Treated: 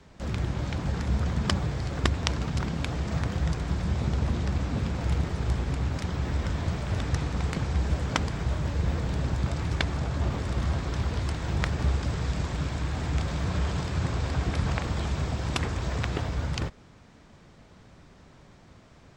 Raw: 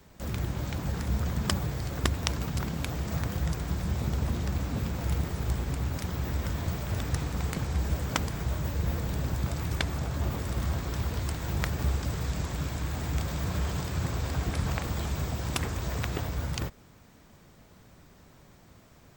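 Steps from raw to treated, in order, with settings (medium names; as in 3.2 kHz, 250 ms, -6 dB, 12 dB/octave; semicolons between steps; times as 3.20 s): low-pass 5.8 kHz 12 dB/octave; trim +2.5 dB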